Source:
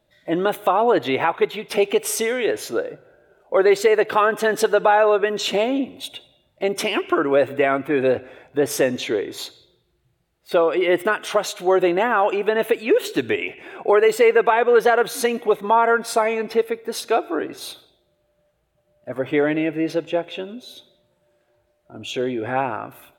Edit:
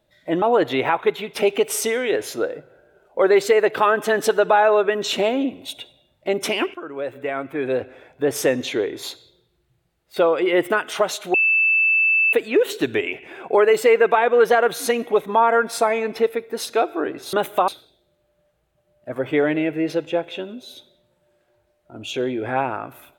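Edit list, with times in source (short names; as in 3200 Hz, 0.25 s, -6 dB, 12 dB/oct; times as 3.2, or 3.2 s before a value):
0.42–0.77 move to 17.68
7.09–8.82 fade in, from -17 dB
11.69–12.68 bleep 2640 Hz -14 dBFS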